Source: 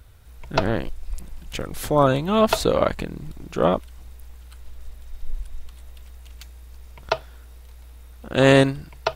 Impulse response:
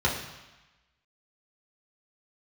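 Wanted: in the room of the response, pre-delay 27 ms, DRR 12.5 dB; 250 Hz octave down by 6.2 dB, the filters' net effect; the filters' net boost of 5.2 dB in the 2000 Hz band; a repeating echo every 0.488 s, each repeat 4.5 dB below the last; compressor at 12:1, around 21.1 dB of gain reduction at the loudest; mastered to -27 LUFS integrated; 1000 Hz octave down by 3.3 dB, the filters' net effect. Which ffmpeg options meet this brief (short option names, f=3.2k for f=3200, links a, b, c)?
-filter_complex "[0:a]equalizer=f=250:t=o:g=-7.5,equalizer=f=1k:t=o:g=-6.5,equalizer=f=2k:t=o:g=8.5,acompressor=threshold=-32dB:ratio=12,aecho=1:1:488|976|1464|1952|2440|2928|3416|3904|4392:0.596|0.357|0.214|0.129|0.0772|0.0463|0.0278|0.0167|0.01,asplit=2[a][b];[1:a]atrim=start_sample=2205,adelay=27[c];[b][c]afir=irnorm=-1:irlink=0,volume=-25dB[d];[a][d]amix=inputs=2:normalize=0,volume=10.5dB"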